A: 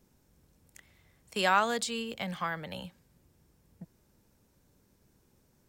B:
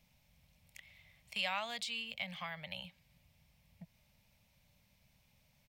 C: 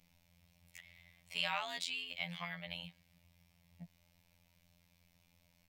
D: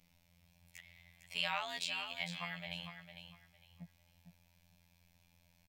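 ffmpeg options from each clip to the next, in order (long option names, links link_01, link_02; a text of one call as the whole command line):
ffmpeg -i in.wav -af "firequalizer=gain_entry='entry(170,0);entry(370,-22);entry(590,2);entry(1500,-5);entry(2200,12);entry(7300,-3);entry(14000,1)':delay=0.05:min_phase=1,acompressor=threshold=-48dB:ratio=1.5,volume=-3dB" out.wav
ffmpeg -i in.wav -af "afftfilt=real='hypot(re,im)*cos(PI*b)':imag='0':win_size=2048:overlap=0.75,volume=3.5dB" out.wav
ffmpeg -i in.wav -af "aecho=1:1:454|908|1362:0.355|0.0816|0.0188" out.wav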